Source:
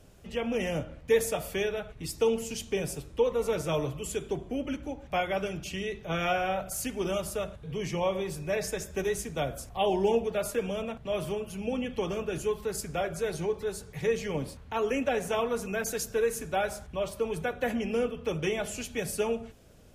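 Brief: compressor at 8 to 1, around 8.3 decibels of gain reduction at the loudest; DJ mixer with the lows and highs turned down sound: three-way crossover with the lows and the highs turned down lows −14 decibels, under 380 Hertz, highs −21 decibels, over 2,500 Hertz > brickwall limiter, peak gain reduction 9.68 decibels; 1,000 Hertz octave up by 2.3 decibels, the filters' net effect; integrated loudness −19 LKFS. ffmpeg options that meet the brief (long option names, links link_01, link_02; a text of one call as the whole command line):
ffmpeg -i in.wav -filter_complex "[0:a]equalizer=frequency=1000:width_type=o:gain=4,acompressor=threshold=-28dB:ratio=8,acrossover=split=380 2500:gain=0.2 1 0.0891[link_01][link_02][link_03];[link_01][link_02][link_03]amix=inputs=3:normalize=0,volume=22.5dB,alimiter=limit=-9dB:level=0:latency=1" out.wav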